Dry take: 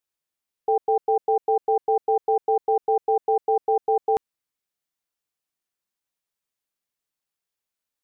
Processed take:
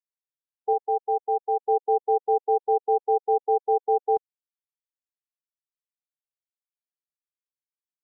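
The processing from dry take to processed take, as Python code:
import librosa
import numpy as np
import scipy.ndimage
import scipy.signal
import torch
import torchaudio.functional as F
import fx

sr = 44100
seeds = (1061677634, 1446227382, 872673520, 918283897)

y = fx.tilt_eq(x, sr, slope=2.5, at=(0.73, 1.68))
y = fx.spectral_expand(y, sr, expansion=1.5)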